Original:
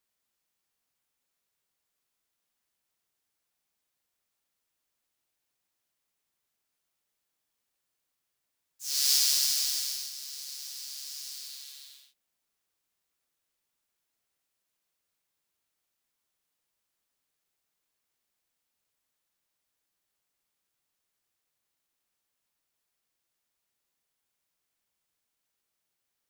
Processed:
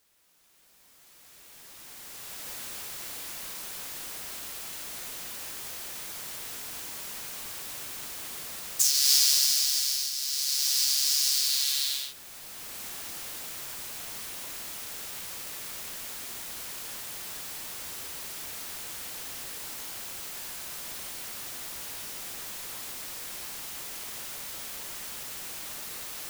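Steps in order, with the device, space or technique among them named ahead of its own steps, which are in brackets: cheap recorder with automatic gain (white noise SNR 32 dB; recorder AGC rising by 12 dB/s); gain +3 dB

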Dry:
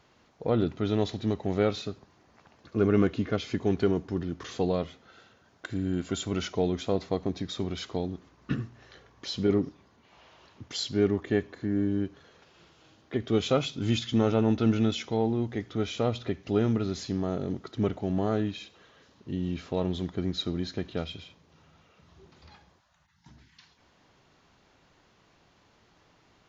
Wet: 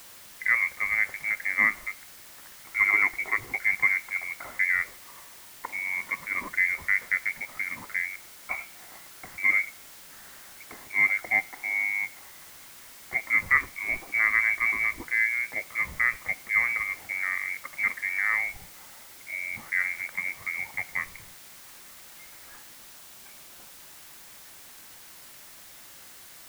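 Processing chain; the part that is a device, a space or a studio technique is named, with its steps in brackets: scrambled radio voice (BPF 340–2800 Hz; inverted band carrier 2500 Hz; white noise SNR 18 dB); notch 450 Hz, Q 12; gain +4.5 dB

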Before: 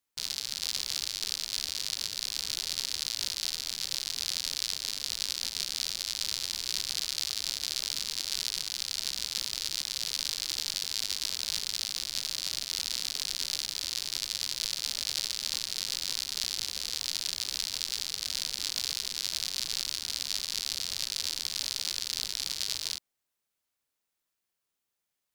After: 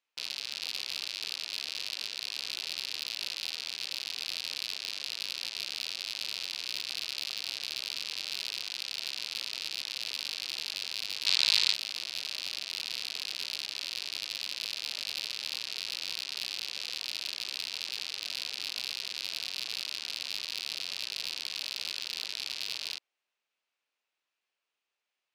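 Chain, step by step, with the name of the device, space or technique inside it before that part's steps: intercom (BPF 410–4400 Hz; bell 2600 Hz +6.5 dB 0.4 oct; soft clip -20.5 dBFS, distortion -14 dB); 11.26–11.74 graphic EQ 125/1000/2000/4000/8000 Hz +7/+7/+7/+9/+8 dB; gain +2 dB

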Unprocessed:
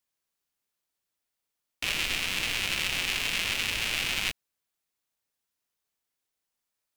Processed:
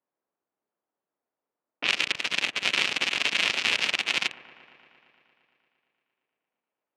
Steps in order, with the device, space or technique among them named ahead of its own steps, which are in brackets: low-pass opened by the level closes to 870 Hz, open at -26 dBFS; high shelf 8700 Hz -5.5 dB; public-address speaker with an overloaded transformer (core saturation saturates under 1100 Hz; BPF 260–6200 Hz); dark delay 0.115 s, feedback 77%, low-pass 1600 Hz, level -17 dB; gain +9 dB

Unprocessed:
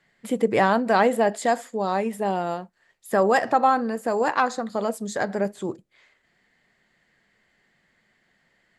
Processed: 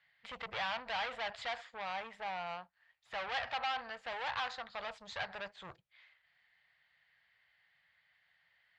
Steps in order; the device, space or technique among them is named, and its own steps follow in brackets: scooped metal amplifier (tube stage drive 28 dB, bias 0.7; speaker cabinet 76–3900 Hz, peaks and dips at 210 Hz -8 dB, 400 Hz -5 dB, 810 Hz +3 dB; passive tone stack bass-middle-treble 10-0-10); 1.84–3.32 bell 3800 Hz -4 dB 1.2 oct; gain +3.5 dB

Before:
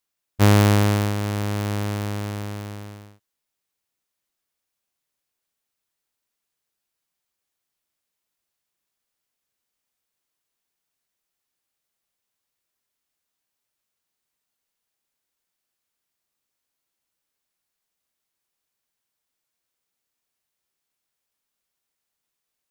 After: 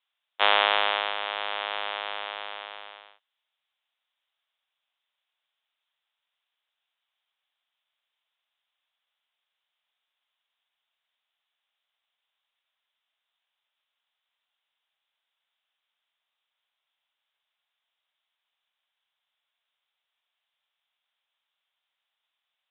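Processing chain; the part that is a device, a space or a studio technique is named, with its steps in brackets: musical greeting card (downsampling 8000 Hz; HPF 660 Hz 24 dB/oct; bell 3400 Hz +8 dB 0.59 oct); gain +2.5 dB

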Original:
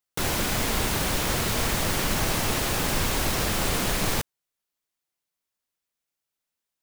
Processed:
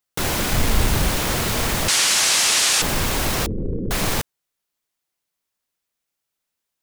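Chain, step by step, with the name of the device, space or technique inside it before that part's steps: 0.53–1.1 low shelf 130 Hz +10.5 dB; 1.88–2.82 weighting filter ITU-R 468; 3.46–3.91 steep low-pass 500 Hz 72 dB/oct; parallel distortion (in parallel at -8 dB: hard clip -24 dBFS, distortion -7 dB); on the sum: gain +1.5 dB

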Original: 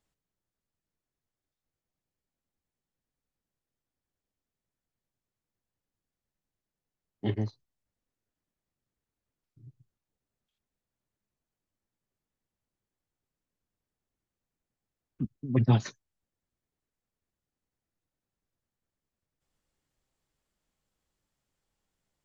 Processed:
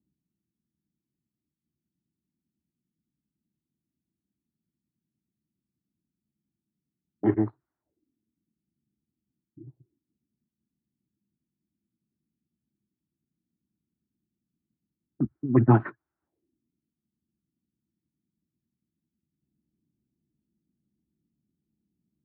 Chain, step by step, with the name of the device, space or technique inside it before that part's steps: envelope filter bass rig (envelope low-pass 200–1300 Hz up, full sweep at -44.5 dBFS; speaker cabinet 66–2300 Hz, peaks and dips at 68 Hz -3 dB, 100 Hz -8 dB, 190 Hz -5 dB, 330 Hz +10 dB, 510 Hz -8 dB, 1200 Hz -7 dB); gain +5.5 dB

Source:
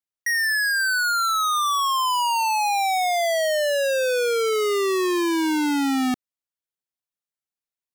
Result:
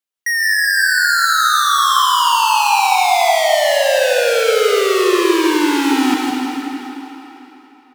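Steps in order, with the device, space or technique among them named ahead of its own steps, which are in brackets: PA in a hall (HPF 190 Hz; bell 3000 Hz +3 dB 0.77 oct; echo 0.163 s -5 dB; reverb RT60 3.7 s, pre-delay 0.108 s, DRR 1.5 dB); gain +4 dB

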